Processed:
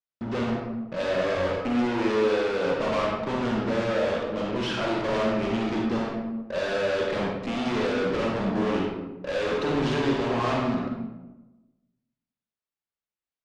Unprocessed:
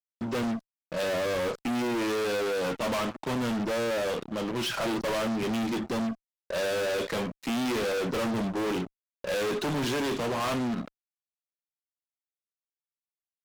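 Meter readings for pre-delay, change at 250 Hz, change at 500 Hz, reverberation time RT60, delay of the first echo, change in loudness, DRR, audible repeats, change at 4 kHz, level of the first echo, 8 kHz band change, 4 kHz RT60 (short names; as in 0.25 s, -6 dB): 38 ms, +3.0 dB, +4.0 dB, 1.0 s, none, +3.0 dB, -1.5 dB, none, 0.0 dB, none, -7.5 dB, 0.60 s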